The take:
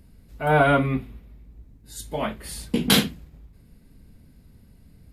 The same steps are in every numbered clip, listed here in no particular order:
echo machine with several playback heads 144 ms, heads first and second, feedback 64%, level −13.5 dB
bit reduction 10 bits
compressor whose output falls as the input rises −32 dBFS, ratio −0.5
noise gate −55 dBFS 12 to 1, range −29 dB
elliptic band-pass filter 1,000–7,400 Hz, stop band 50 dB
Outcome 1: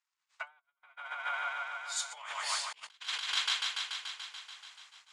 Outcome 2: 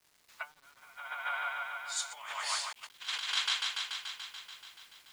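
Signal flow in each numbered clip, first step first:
bit reduction, then echo machine with several playback heads, then compressor whose output falls as the input rises, then elliptic band-pass filter, then noise gate
echo machine with several playback heads, then compressor whose output falls as the input rises, then noise gate, then elliptic band-pass filter, then bit reduction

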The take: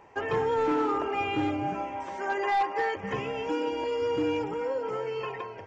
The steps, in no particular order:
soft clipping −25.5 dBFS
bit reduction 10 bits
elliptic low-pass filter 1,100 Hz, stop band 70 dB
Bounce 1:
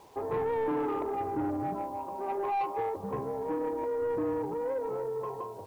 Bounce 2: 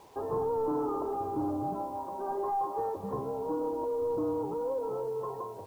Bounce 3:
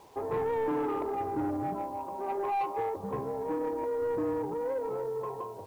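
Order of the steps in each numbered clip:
elliptic low-pass filter, then bit reduction, then soft clipping
soft clipping, then elliptic low-pass filter, then bit reduction
elliptic low-pass filter, then soft clipping, then bit reduction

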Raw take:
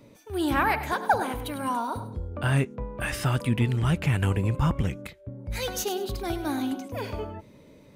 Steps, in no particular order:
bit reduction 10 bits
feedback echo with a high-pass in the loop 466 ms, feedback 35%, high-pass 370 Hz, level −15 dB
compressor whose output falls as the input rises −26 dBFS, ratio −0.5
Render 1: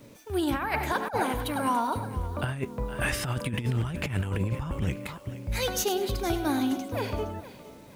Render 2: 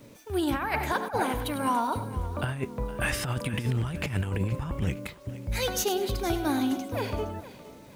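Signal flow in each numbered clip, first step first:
feedback echo with a high-pass in the loop, then bit reduction, then compressor whose output falls as the input rises
bit reduction, then compressor whose output falls as the input rises, then feedback echo with a high-pass in the loop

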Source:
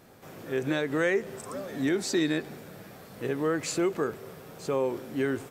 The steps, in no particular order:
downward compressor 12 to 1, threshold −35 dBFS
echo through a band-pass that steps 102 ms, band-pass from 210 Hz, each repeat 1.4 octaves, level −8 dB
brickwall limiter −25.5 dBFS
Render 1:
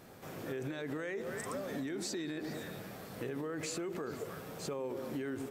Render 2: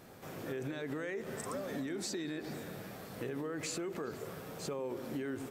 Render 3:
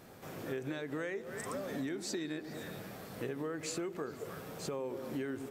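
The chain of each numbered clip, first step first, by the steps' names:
echo through a band-pass that steps, then brickwall limiter, then downward compressor
brickwall limiter, then echo through a band-pass that steps, then downward compressor
echo through a band-pass that steps, then downward compressor, then brickwall limiter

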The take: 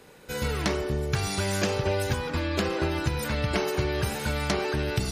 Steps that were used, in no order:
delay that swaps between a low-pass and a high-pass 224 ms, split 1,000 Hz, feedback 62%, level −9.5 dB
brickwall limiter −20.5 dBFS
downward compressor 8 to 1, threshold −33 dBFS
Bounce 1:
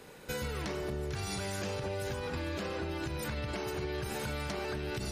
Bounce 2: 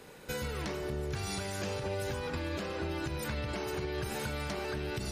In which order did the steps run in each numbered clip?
delay that swaps between a low-pass and a high-pass, then brickwall limiter, then downward compressor
brickwall limiter, then downward compressor, then delay that swaps between a low-pass and a high-pass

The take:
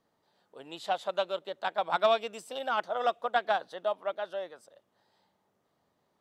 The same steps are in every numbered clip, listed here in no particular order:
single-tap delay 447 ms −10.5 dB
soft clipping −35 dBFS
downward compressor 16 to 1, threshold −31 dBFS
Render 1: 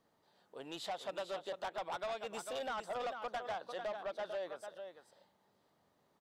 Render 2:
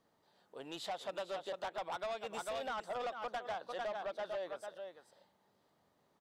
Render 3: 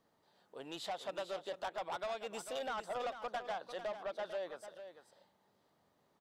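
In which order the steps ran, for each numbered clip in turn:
downward compressor, then single-tap delay, then soft clipping
single-tap delay, then downward compressor, then soft clipping
downward compressor, then soft clipping, then single-tap delay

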